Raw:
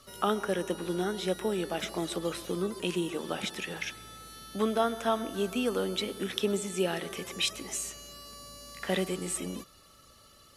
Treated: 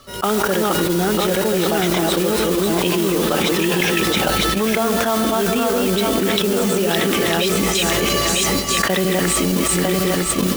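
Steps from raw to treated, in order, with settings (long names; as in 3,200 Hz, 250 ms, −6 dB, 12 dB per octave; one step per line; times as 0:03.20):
feedback delay that plays each chunk backwards 476 ms, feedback 42%, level −1.5 dB
downward expander −30 dBFS
high-shelf EQ 6,600 Hz −10 dB
noise that follows the level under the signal 11 dB
envelope flattener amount 100%
level +4.5 dB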